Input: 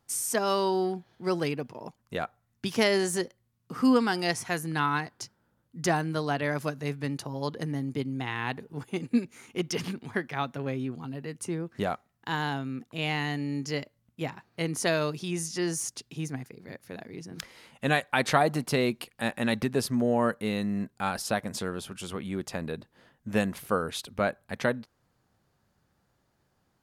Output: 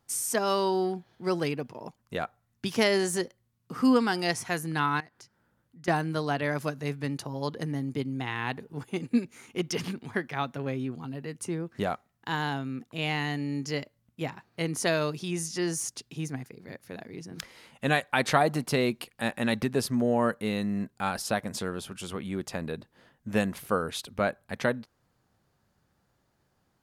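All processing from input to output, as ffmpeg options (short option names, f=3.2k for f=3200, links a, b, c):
-filter_complex "[0:a]asettb=1/sr,asplit=3[a][b][c];[a]atrim=end=5.004[d];[b]atrim=start=5:end=5.88,asetpts=PTS-STARTPTS,afade=t=in:d=0.004:c=qsin,afade=t=out:st=0.876:d=0.004:c=qsin,equalizer=f=1.8k:t=o:w=0.99:g=4.5,acompressor=threshold=-58dB:ratio=2:attack=3.2:release=140:knee=1:detection=peak[e];[c]atrim=start=5.876[f];[d][e]acrossfade=d=0.004:c1=hsin:c2=qsin[g];[g][f]acrossfade=d=0.004:c1=qsin:c2=hsin"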